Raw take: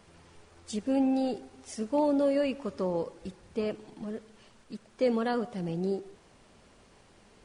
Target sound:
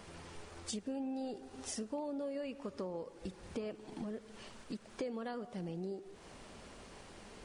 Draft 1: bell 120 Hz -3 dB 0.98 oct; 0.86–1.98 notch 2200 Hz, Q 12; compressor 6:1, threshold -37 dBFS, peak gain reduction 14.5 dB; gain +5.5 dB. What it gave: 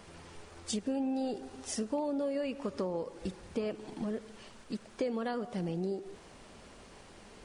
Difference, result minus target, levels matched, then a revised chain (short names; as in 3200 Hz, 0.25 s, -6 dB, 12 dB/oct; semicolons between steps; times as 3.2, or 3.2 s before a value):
compressor: peak gain reduction -6.5 dB
bell 120 Hz -3 dB 0.98 oct; 0.86–1.98 notch 2200 Hz, Q 12; compressor 6:1, threshold -45 dBFS, peak gain reduction 21 dB; gain +5.5 dB